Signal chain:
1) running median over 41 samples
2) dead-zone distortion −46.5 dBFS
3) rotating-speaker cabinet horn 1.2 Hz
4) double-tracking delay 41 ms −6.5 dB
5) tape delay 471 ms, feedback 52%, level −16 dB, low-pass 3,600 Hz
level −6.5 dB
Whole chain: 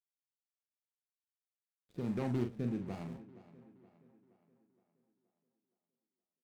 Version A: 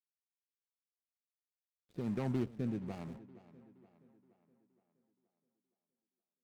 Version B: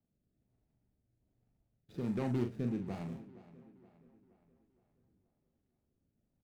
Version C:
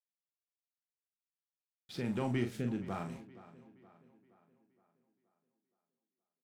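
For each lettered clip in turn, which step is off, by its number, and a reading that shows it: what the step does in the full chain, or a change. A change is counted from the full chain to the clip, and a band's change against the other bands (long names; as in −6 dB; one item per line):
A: 4, change in crest factor −2.0 dB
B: 2, distortion level −21 dB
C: 1, 4 kHz band +7.5 dB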